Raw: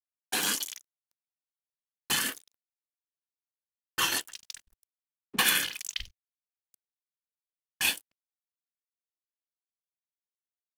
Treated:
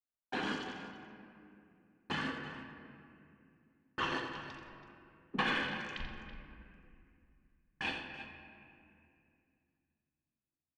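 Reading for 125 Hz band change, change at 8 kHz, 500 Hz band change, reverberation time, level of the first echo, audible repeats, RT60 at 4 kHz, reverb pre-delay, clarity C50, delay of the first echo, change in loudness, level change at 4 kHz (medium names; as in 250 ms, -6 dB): +3.5 dB, -29.0 dB, +1.5 dB, 2.5 s, -8.5 dB, 2, 1.4 s, 3 ms, 3.0 dB, 85 ms, -10.5 dB, -12.0 dB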